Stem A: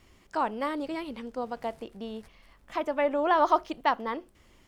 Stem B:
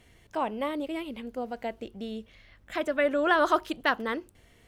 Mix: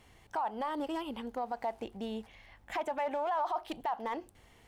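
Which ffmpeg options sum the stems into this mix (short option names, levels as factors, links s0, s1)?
-filter_complex "[0:a]highpass=f=790:t=q:w=4.9,volume=0.376,asplit=2[s0][s1];[1:a]asoftclip=type=hard:threshold=0.0398,volume=-1,volume=0.75[s2];[s1]apad=whole_len=206295[s3];[s2][s3]sidechaincompress=threshold=0.0126:ratio=8:attack=7:release=141[s4];[s0][s4]amix=inputs=2:normalize=0,alimiter=level_in=1.26:limit=0.0631:level=0:latency=1:release=17,volume=0.794"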